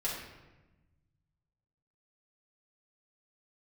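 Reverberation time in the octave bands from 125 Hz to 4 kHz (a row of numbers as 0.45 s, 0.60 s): 2.4 s, 1.6 s, 1.2 s, 1.0 s, 1.0 s, 0.75 s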